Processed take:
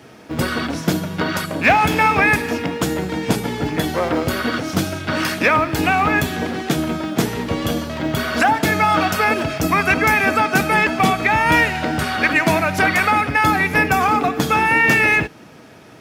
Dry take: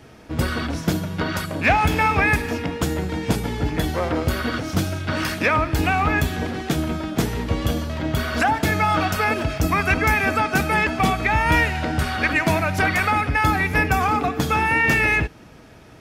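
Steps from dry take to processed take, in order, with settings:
high-pass filter 140 Hz 12 dB per octave
log-companded quantiser 8 bits
level +4 dB

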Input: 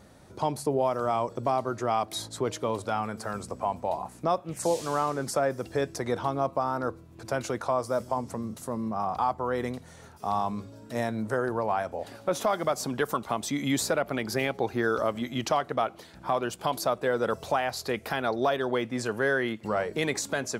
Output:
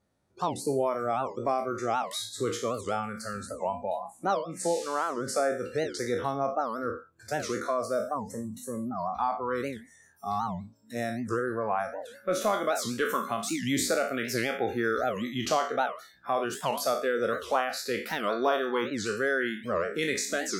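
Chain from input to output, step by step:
peak hold with a decay on every bin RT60 0.53 s
noise reduction from a noise print of the clip's start 21 dB
0:03.33–0:05.99: low-pass filter 11,000 Hz 12 dB per octave
wow of a warped record 78 rpm, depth 250 cents
level −2 dB

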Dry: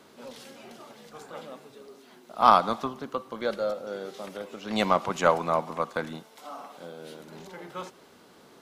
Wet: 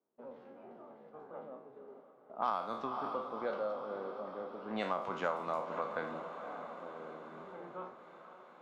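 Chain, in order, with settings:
peak hold with a decay on every bin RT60 0.43 s
low-pass that shuts in the quiet parts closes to 600 Hz, open at −18 dBFS
low-shelf EQ 160 Hz −12 dB
noise gate −53 dBFS, range −26 dB
high-shelf EQ 3,000 Hz −11.5 dB, from 0:05.48 −5.5 dB
feedback delay with all-pass diffusion 529 ms, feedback 60%, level −14 dB
downward compressor 3 to 1, threshold −28 dBFS, peak gain reduction 12 dB
one half of a high-frequency compander encoder only
level −5 dB

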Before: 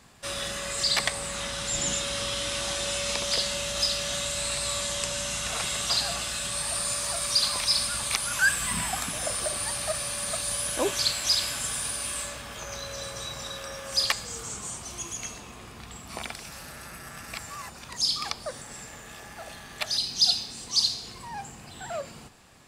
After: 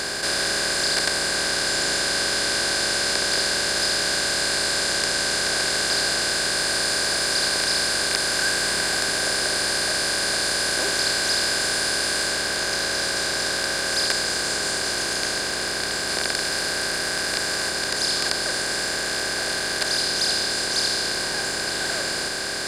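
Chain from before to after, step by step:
compressor on every frequency bin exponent 0.2
level −8 dB

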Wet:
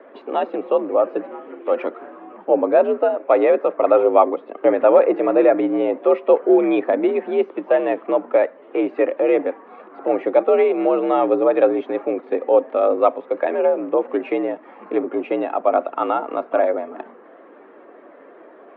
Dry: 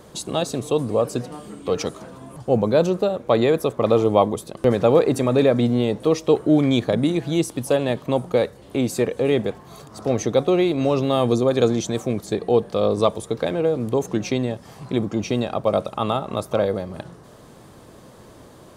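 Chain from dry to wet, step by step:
spectral magnitudes quantised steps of 15 dB
single-sideband voice off tune +64 Hz 230–2,400 Hz
level +3.5 dB

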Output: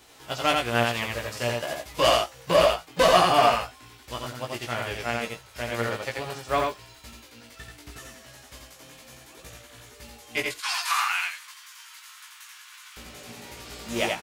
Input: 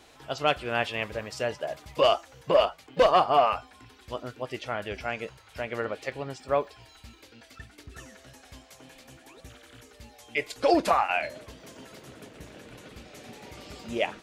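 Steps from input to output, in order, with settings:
spectral envelope flattened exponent 0.6
0:10.50–0:12.97: Butterworth high-pass 1,000 Hz 48 dB per octave
double-tracking delay 17 ms −3 dB
single-tap delay 85 ms −3 dB
level −1 dB

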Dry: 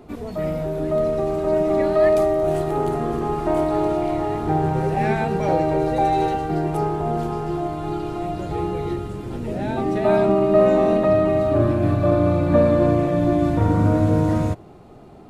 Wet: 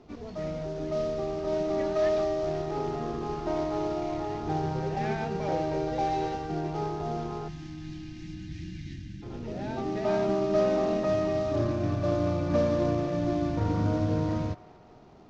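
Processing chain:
variable-slope delta modulation 32 kbit/s
time-frequency box erased 0:07.48–0:09.22, 340–1,500 Hz
on a send: delay with a band-pass on its return 198 ms, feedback 71%, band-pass 1,300 Hz, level −19 dB
on the sum: level −9 dB

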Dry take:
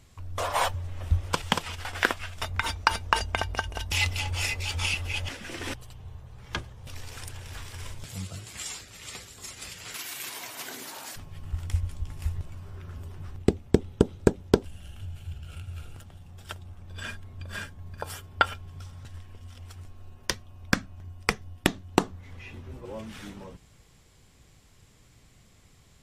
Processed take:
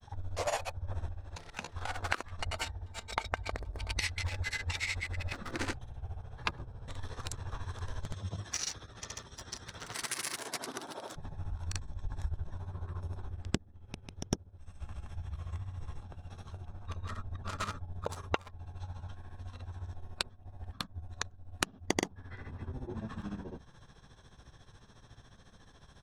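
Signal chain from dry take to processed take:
adaptive Wiener filter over 15 samples
high-shelf EQ 3,000 Hz +9 dB
downward compressor 16 to 1, threshold −31 dBFS, peak gain reduction 20 dB
granular cloud 100 ms, grains 14 per second, pitch spread up and down by 0 semitones
formants moved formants −4 semitones
one half of a high-frequency compander encoder only
level +3.5 dB

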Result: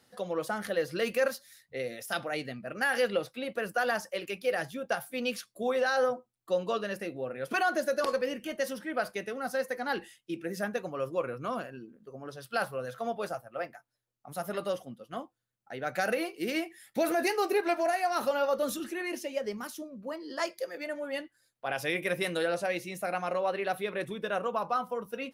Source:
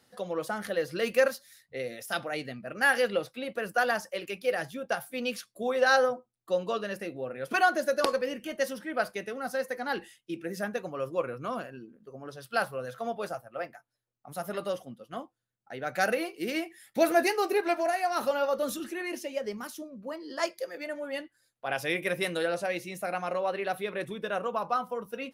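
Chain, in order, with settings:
brickwall limiter −18.5 dBFS, peak gain reduction 8 dB

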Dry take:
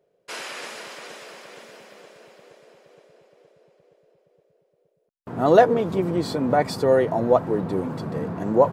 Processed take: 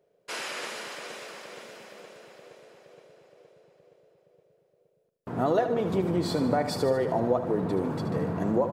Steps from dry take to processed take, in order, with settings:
downward compressor 6 to 1, threshold −21 dBFS, peak gain reduction 12.5 dB
on a send: repeating echo 75 ms, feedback 58%, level −10 dB
on the sum: level −1 dB

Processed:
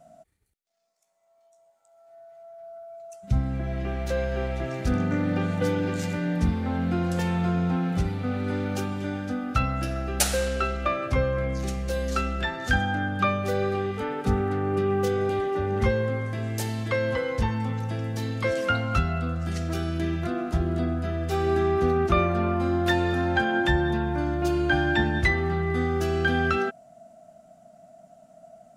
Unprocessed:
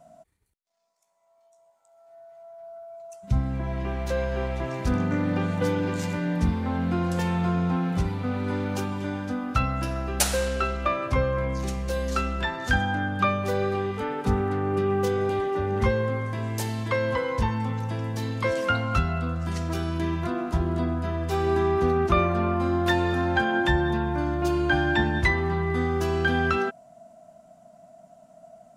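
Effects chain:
notch filter 1,000 Hz, Q 5.5

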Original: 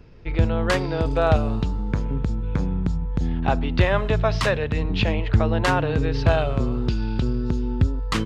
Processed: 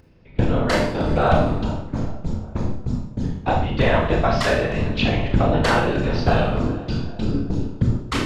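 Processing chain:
mains-hum notches 60/120/180 Hz
noise gate with hold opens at −14 dBFS
upward compression, threshold −42 dBFS
random phases in short frames
on a send: tape delay 395 ms, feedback 53%, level −16.5 dB, low-pass 2,300 Hz
on the sum: four-comb reverb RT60 0.56 s, combs from 25 ms, DRR 1 dB

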